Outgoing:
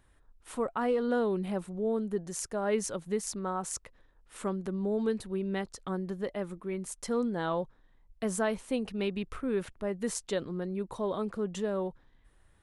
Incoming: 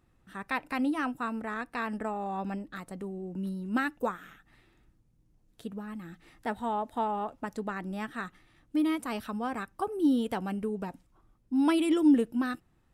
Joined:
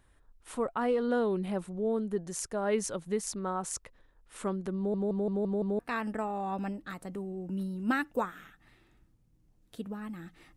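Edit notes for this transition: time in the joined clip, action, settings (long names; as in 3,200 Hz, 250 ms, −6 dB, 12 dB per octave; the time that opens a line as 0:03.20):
outgoing
0:04.77: stutter in place 0.17 s, 6 plays
0:05.79: continue with incoming from 0:01.65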